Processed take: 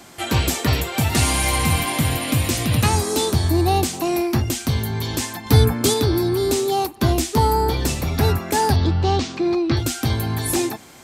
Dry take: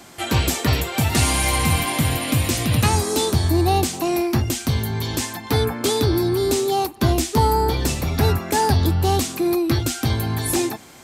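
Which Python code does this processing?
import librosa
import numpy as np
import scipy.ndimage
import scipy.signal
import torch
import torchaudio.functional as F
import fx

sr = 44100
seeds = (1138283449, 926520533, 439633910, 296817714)

y = fx.bass_treble(x, sr, bass_db=9, treble_db=5, at=(5.46, 5.94))
y = fx.lowpass(y, sr, hz=5500.0, slope=24, at=(8.76, 9.77))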